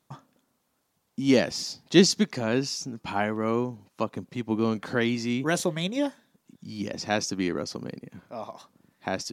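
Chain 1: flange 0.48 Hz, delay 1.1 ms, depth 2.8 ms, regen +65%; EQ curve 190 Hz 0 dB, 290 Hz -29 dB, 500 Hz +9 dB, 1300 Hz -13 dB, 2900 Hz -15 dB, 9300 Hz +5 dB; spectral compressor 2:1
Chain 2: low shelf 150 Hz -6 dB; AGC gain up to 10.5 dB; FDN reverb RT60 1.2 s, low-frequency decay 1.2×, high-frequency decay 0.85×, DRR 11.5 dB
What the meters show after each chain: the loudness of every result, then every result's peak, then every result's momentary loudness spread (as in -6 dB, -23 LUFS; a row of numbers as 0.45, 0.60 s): -31.5, -20.5 LUFS; -13.0, -1.5 dBFS; 13, 15 LU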